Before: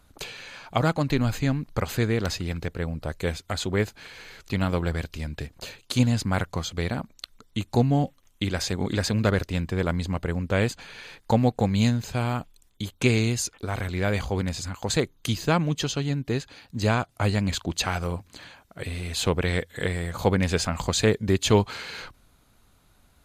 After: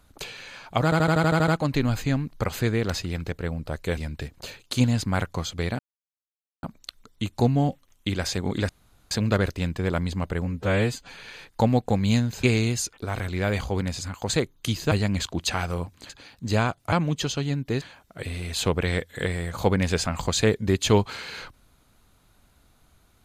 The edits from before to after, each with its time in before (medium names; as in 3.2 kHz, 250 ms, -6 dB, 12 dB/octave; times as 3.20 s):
0.84 s: stutter 0.08 s, 9 plays
3.33–5.16 s: delete
6.98 s: insert silence 0.84 s
9.04 s: insert room tone 0.42 s
10.38–10.83 s: stretch 1.5×
12.14–13.04 s: delete
15.52–16.41 s: swap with 17.24–18.42 s